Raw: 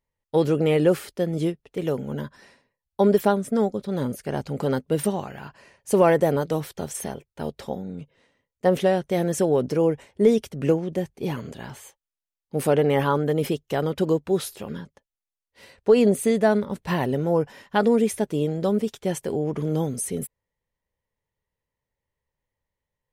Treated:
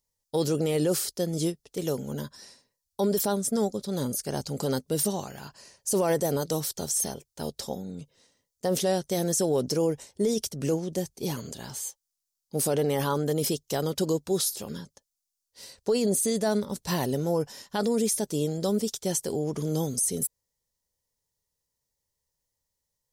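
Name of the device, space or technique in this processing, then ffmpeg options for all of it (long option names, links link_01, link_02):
over-bright horn tweeter: -af "highshelf=frequency=3600:width_type=q:width=1.5:gain=13.5,alimiter=limit=-13.5dB:level=0:latency=1:release=19,volume=-3.5dB"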